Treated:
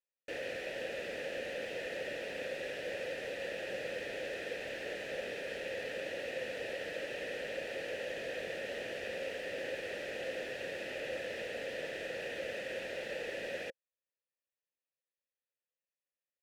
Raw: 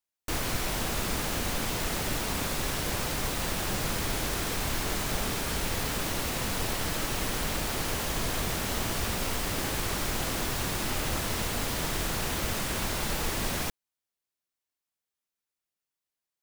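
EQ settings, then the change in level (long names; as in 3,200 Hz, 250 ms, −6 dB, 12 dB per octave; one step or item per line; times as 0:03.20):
formant filter e
+5.0 dB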